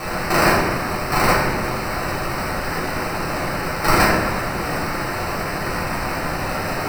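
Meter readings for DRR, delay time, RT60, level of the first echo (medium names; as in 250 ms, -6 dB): -8.5 dB, no echo, 1.2 s, no echo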